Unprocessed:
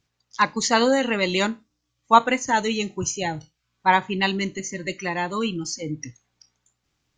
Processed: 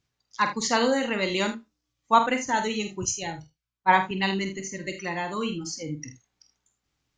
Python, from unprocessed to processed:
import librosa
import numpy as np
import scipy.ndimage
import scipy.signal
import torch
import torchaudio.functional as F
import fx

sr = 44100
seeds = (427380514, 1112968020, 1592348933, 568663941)

y = fx.room_early_taps(x, sr, ms=(47, 78), db=(-8.5, -13.0))
y = fx.band_widen(y, sr, depth_pct=70, at=(3.05, 4.11))
y = F.gain(torch.from_numpy(y), -4.5).numpy()